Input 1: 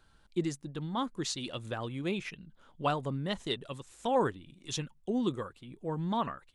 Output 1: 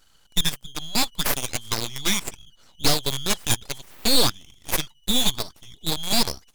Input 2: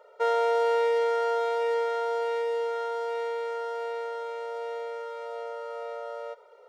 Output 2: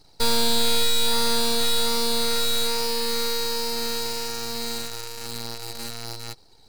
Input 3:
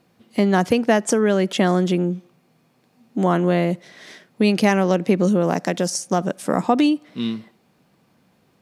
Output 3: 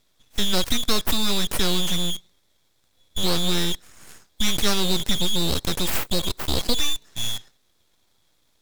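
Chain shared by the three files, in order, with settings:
band-splitting scrambler in four parts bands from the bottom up 4123
guitar amp tone stack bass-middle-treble 5-5-5
in parallel at −8.5 dB: log-companded quantiser 2 bits
on the sum: graphic EQ with 15 bands 160 Hz +9 dB, 630 Hz +8 dB, 10,000 Hz +5 dB
full-wave rectification
loudness normalisation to −24 LKFS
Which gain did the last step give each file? +15.5, +10.0, +5.5 decibels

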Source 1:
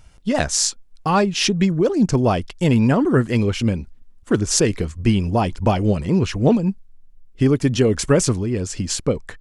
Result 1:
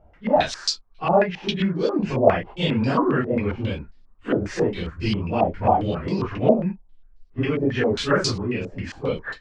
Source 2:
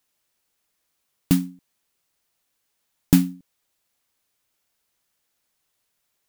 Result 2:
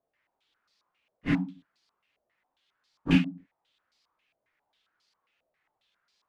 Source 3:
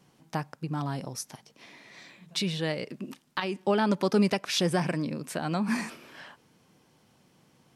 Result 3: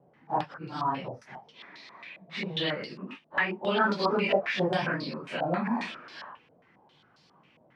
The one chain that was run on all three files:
random phases in long frames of 100 ms
low-shelf EQ 270 Hz −5.5 dB
in parallel at −0.5 dB: downward compressor, threshold −26 dBFS
on the sum: low-pass on a step sequencer 7.4 Hz 630–4,600 Hz
level −5.5 dB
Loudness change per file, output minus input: −3.5, −6.5, 0.0 LU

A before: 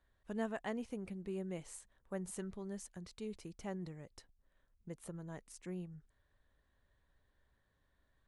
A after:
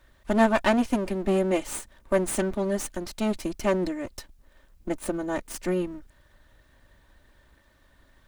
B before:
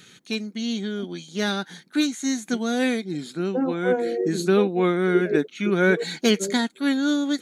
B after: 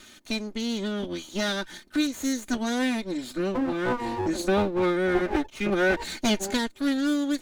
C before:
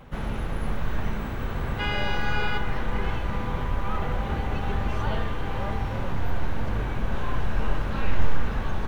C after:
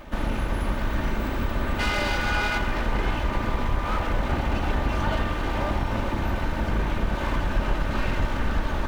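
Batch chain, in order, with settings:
lower of the sound and its delayed copy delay 3.3 ms
in parallel at +3 dB: downward compressor, threshold −31 dBFS
on the sum: loudness normalisation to −27 LKFS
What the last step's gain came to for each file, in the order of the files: +11.5, −6.0, −0.5 decibels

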